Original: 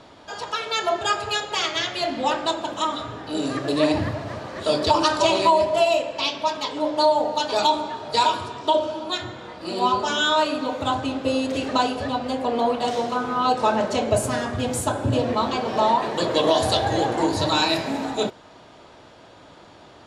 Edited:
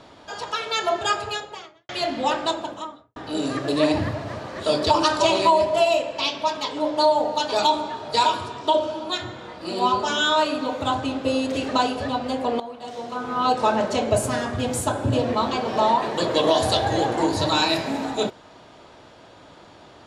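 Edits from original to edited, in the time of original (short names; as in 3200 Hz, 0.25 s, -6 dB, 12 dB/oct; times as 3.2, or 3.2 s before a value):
1.1–1.89 studio fade out
2.45–3.16 studio fade out
12.6–13.44 fade in quadratic, from -15 dB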